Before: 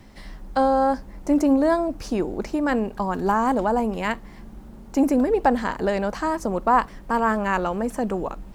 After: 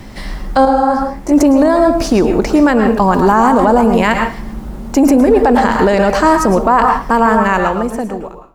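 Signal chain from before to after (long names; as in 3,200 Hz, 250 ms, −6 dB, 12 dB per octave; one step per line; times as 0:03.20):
fade-out on the ending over 1.73 s
on a send at −6 dB: convolution reverb RT60 0.35 s, pre-delay 104 ms
on the sum: boost into a limiter +16 dB
0:00.65–0:01.32: micro pitch shift up and down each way 46 cents
level −1 dB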